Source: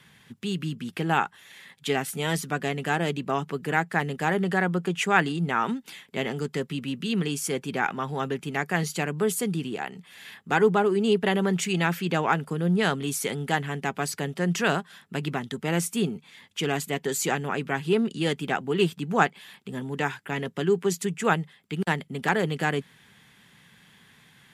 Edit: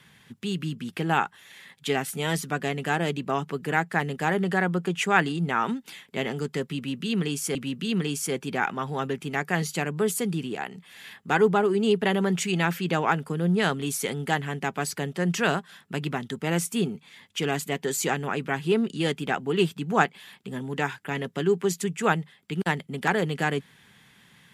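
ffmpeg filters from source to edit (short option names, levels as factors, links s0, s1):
-filter_complex "[0:a]asplit=2[s0][s1];[s0]atrim=end=7.552[s2];[s1]atrim=start=6.758[s3];[s2][s3]acrossfade=d=0.004:c1=hsin:c2=hsin"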